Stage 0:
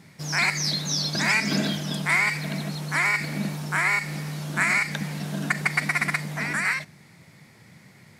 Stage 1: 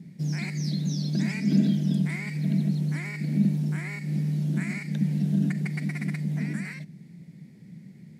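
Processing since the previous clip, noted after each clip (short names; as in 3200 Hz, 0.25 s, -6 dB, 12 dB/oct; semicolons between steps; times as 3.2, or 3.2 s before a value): low shelf 170 Hz -10.5 dB; in parallel at -2 dB: compressor, threshold -30 dBFS, peak gain reduction 12 dB; on the sum: EQ curve 110 Hz 0 dB, 170 Hz +13 dB, 1200 Hz -25 dB, 1900 Hz -15 dB; gain -2 dB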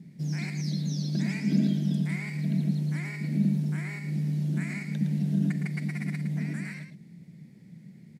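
echo 0.112 s -8 dB; gain -3 dB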